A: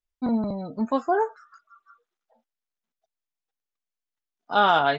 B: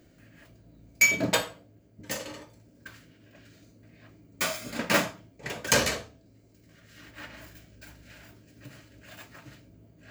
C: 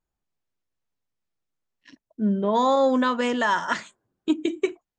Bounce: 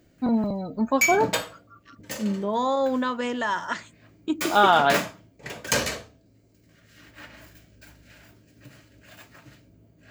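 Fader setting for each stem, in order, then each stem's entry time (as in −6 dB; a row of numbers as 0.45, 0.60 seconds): +1.5, −1.0, −4.0 decibels; 0.00, 0.00, 0.00 seconds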